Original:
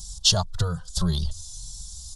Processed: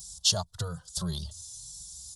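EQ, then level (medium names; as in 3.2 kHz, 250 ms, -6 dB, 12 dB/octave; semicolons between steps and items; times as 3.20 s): high-pass 77 Hz 12 dB/octave; peaking EQ 600 Hz +3 dB 0.55 oct; treble shelf 8 kHz +12 dB; -8.0 dB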